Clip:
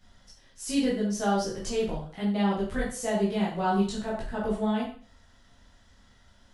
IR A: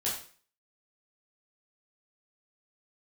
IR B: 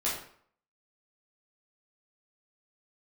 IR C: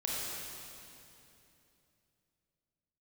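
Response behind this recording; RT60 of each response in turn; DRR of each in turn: A; 0.45, 0.60, 2.9 seconds; −7.0, −7.5, −5.5 decibels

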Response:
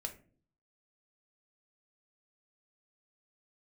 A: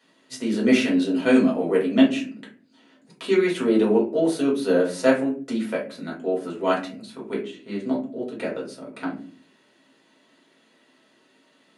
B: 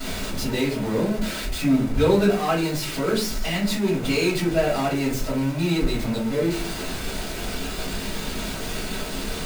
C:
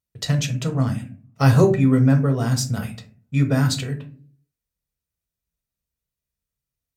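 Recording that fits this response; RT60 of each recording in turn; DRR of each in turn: C; non-exponential decay, 0.45 s, non-exponential decay; −4.0, −13.0, 4.0 decibels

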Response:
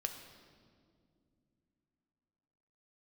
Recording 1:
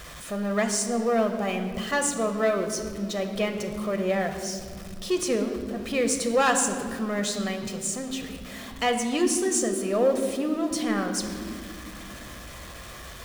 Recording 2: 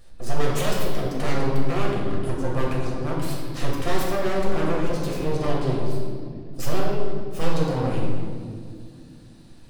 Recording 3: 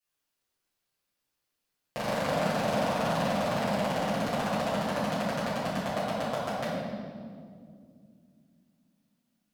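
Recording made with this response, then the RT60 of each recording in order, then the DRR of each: 1; non-exponential decay, 2.3 s, 2.2 s; 5.0, −4.5, −12.0 decibels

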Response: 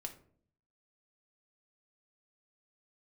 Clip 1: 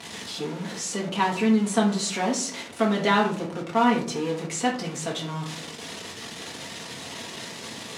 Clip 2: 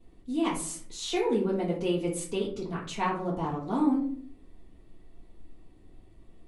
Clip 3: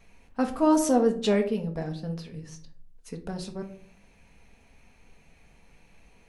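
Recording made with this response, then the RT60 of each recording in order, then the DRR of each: 3; 0.55, 0.55, 0.55 seconds; −3.5, −10.5, 4.0 decibels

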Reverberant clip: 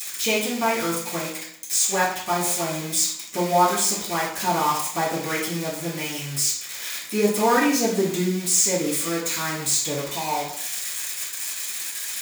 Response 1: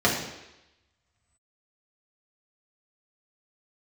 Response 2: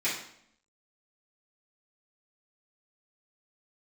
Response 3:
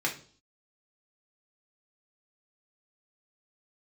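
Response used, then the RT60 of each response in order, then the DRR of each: 2; 0.95, 0.65, 0.45 seconds; −5.0, −11.5, −1.5 decibels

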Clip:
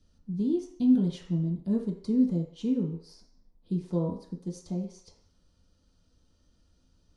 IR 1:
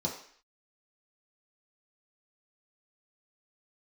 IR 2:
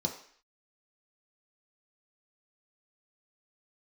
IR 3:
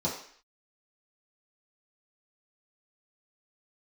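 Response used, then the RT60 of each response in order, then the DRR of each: 1; 0.55, 0.55, 0.55 seconds; −3.5, 1.0, −7.5 decibels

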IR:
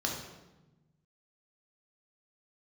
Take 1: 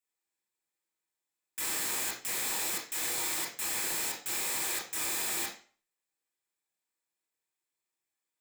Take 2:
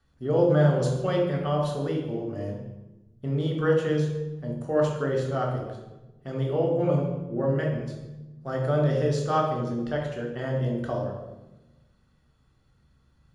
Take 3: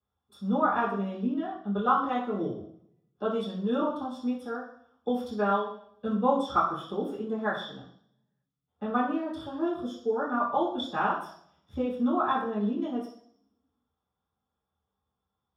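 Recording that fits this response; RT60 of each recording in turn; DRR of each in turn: 2; 0.40, 1.1, 0.60 seconds; −4.0, −0.5, −11.0 decibels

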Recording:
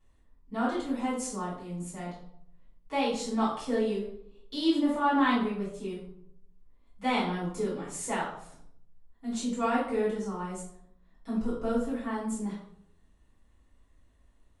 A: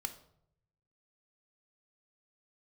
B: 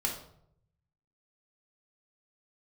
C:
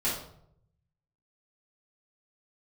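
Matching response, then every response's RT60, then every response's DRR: C; 0.70, 0.70, 0.70 seconds; 7.0, −1.0, −9.5 decibels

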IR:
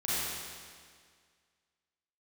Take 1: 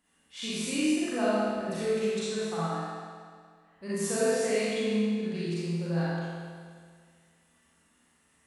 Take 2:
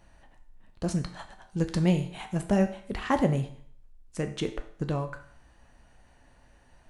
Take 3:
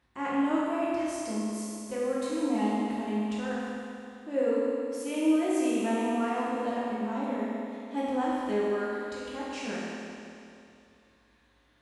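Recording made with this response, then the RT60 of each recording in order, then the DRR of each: 1; 1.9, 0.55, 2.6 seconds; −11.0, 6.5, −8.5 decibels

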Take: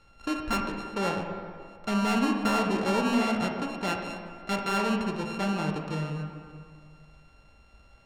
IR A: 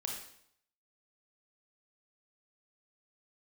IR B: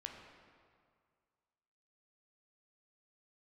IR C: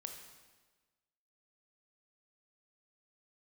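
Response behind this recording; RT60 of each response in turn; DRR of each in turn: B; 0.70, 2.0, 1.3 seconds; 0.0, 1.5, 4.0 decibels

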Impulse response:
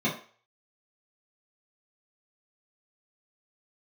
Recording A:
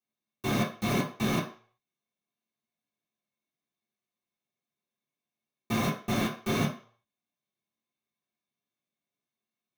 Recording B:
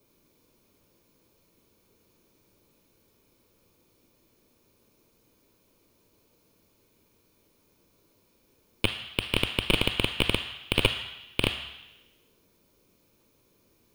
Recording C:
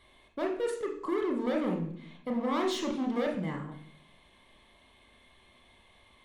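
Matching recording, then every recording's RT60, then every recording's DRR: A; 0.40, 0.95, 0.60 seconds; −8.5, 10.5, 0.5 decibels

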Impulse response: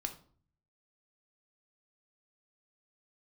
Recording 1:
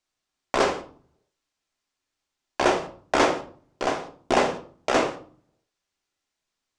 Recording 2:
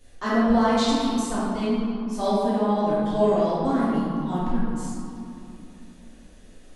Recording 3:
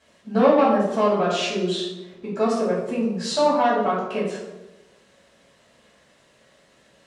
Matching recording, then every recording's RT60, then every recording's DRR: 1; 0.50, 2.7, 1.0 seconds; 4.5, −11.5, −8.5 decibels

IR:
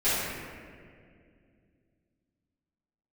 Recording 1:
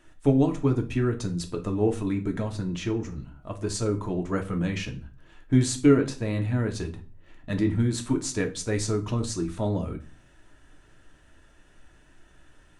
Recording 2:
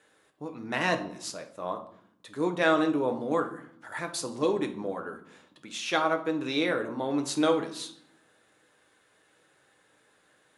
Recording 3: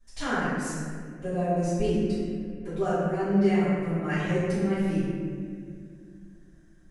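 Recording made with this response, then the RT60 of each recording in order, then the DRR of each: 3; 0.40, 0.65, 2.2 seconds; 3.0, 4.5, −16.5 decibels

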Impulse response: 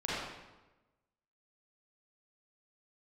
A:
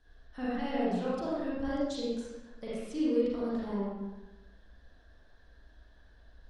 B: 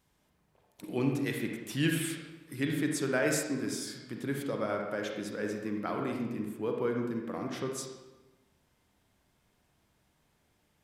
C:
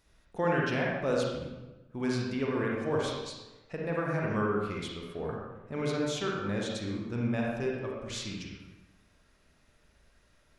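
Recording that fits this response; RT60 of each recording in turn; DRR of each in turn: A; 1.1, 1.1, 1.1 seconds; −9.0, 1.5, −3.0 decibels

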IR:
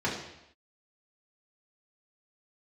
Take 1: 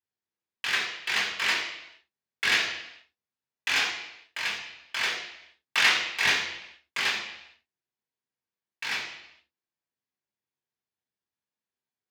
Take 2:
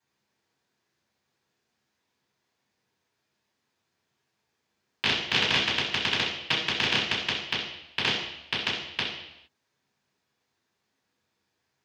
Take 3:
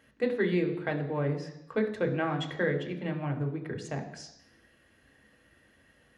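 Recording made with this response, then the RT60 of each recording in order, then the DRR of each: 1; non-exponential decay, non-exponential decay, non-exponential decay; −6.5, −12.0, 3.5 decibels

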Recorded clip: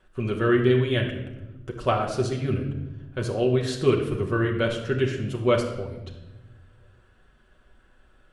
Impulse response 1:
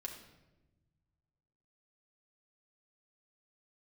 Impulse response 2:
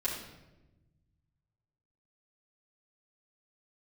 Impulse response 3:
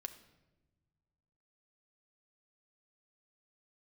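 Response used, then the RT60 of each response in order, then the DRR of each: 1; 1.1 s, 1.0 s, non-exponential decay; −0.5, −9.0, 7.0 decibels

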